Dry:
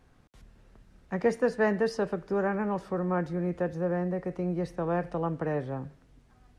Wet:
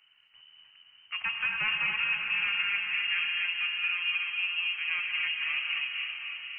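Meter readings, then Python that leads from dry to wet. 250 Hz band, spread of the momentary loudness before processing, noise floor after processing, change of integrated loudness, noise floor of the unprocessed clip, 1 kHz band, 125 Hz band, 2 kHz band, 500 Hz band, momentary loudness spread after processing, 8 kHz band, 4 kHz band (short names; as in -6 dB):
under -30 dB, 6 LU, -62 dBFS, +2.0 dB, -61 dBFS, -7.5 dB, under -25 dB, +12.5 dB, under -30 dB, 6 LU, n/a, +23.0 dB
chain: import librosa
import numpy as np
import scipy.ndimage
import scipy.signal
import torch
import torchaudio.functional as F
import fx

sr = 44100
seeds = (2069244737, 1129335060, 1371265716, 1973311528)

p1 = 10.0 ** (-21.0 / 20.0) * (np.abs((x / 10.0 ** (-21.0 / 20.0) + 3.0) % 4.0 - 2.0) - 1.0)
p2 = fx.freq_invert(p1, sr, carrier_hz=3000)
p3 = fx.graphic_eq_10(p2, sr, hz=(125, 250, 500, 1000, 2000), db=(5, -5, -6, 4, 5))
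p4 = p3 + fx.echo_diffused(p3, sr, ms=529, feedback_pct=45, wet_db=-6, dry=0)
p5 = fx.rev_gated(p4, sr, seeds[0], gate_ms=310, shape='rising', drr_db=1.0)
y = F.gain(torch.from_numpy(p5), -7.5).numpy()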